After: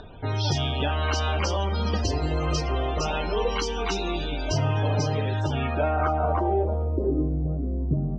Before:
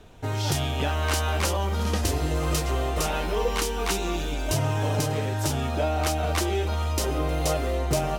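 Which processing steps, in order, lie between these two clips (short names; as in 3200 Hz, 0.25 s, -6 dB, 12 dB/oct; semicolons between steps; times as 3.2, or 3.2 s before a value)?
upward compressor, threshold -36 dBFS; loudest bins only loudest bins 64; two-slope reverb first 0.29 s, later 1.9 s, from -21 dB, DRR 16 dB; low-pass sweep 4900 Hz -> 230 Hz, 5.13–7.39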